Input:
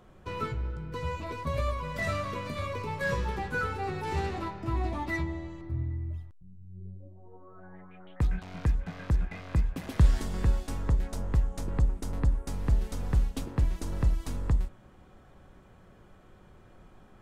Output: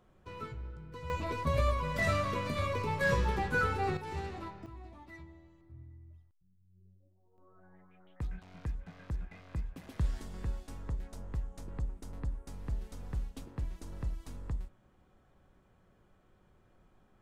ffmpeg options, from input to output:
ffmpeg -i in.wav -af "asetnsamples=nb_out_samples=441:pad=0,asendcmd='1.1 volume volume 1dB;3.97 volume volume -8dB;4.66 volume volume -19dB;7.38 volume volume -11dB',volume=-9.5dB" out.wav

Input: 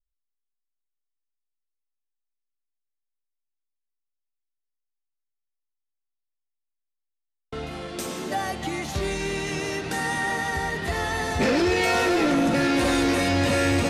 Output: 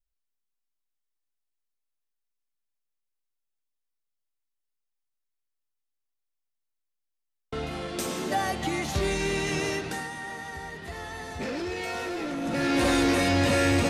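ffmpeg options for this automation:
ffmpeg -i in.wav -af "volume=10.5dB,afade=type=out:start_time=9.67:duration=0.43:silence=0.266073,afade=type=in:start_time=12.4:duration=0.44:silence=0.316228" out.wav

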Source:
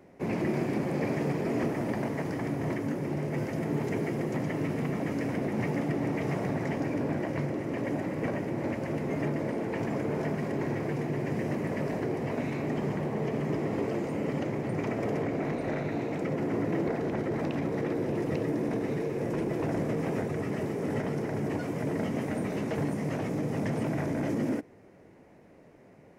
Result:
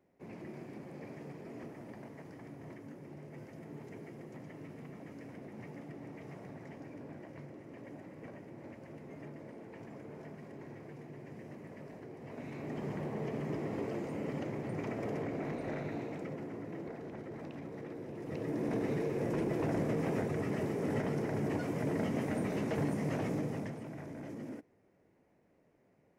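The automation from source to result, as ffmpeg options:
ffmpeg -i in.wav -af "volume=4dB,afade=type=in:start_time=12.17:duration=0.84:silence=0.298538,afade=type=out:start_time=15.89:duration=0.67:silence=0.446684,afade=type=in:start_time=18.19:duration=0.6:silence=0.281838,afade=type=out:start_time=23.31:duration=0.47:silence=0.266073" out.wav

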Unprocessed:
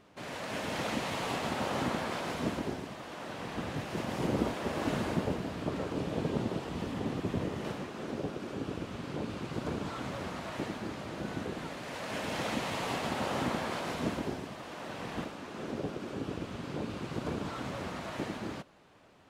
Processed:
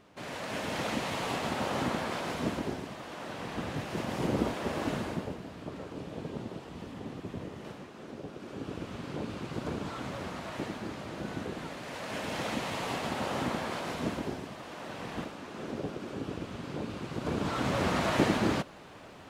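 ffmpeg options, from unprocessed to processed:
ffmpeg -i in.wav -af "volume=18.5dB,afade=type=out:start_time=4.72:duration=0.63:silence=0.421697,afade=type=in:start_time=8.25:duration=0.65:silence=0.473151,afade=type=in:start_time=17.18:duration=0.83:silence=0.281838" out.wav

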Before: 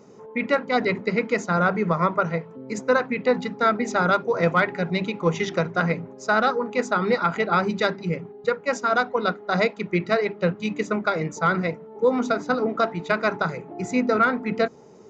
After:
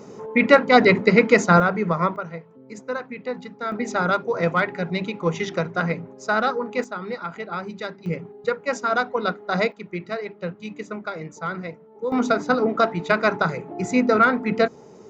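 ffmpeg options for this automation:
ffmpeg -i in.wav -af "asetnsamples=nb_out_samples=441:pad=0,asendcmd='1.6 volume volume 0dB;2.16 volume volume -8.5dB;3.72 volume volume -1dB;6.84 volume volume -9dB;8.06 volume volume -0.5dB;9.72 volume volume -7.5dB;12.12 volume volume 3dB',volume=8dB" out.wav

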